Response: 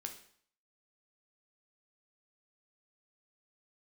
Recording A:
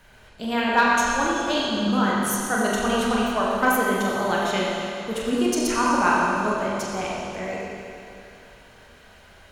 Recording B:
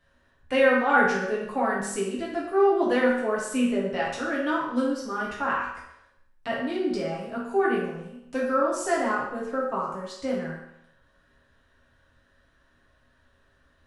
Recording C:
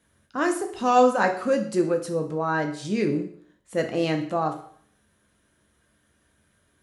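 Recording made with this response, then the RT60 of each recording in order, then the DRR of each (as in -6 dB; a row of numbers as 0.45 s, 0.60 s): C; 2.7 s, 0.80 s, 0.55 s; -5.5 dB, -6.0 dB, 4.0 dB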